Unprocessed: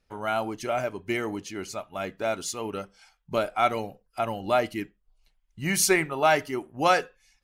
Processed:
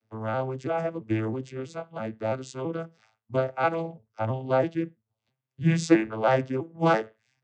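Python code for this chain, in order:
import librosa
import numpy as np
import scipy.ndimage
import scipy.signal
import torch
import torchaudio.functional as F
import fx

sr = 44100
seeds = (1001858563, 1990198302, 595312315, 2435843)

y = fx.vocoder_arp(x, sr, chord='minor triad', root=45, every_ms=330)
y = y * 10.0 ** (1.5 / 20.0)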